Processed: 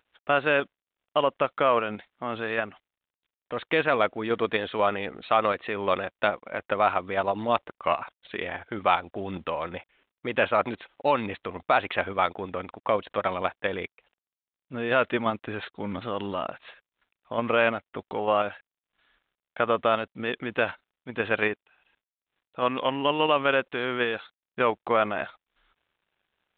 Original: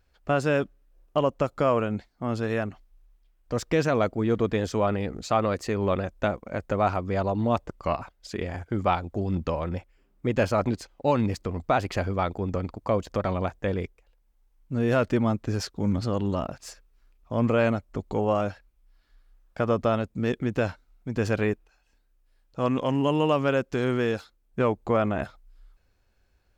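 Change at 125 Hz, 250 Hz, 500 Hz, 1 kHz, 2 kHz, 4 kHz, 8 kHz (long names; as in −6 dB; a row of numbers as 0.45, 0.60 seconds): −12.5 dB, −6.5 dB, −0.5 dB, +3.5 dB, +6.0 dB, +5.5 dB, below −35 dB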